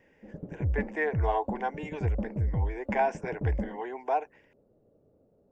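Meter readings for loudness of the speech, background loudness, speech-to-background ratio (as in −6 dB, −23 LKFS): −33.0 LKFS, −34.0 LKFS, 1.0 dB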